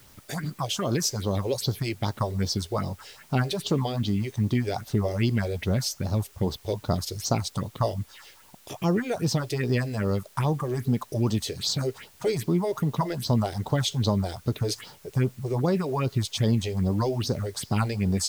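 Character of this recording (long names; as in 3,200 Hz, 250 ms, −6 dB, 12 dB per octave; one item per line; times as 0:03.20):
phaser sweep stages 4, 2.5 Hz, lowest notch 170–2,400 Hz
a quantiser's noise floor 10 bits, dither triangular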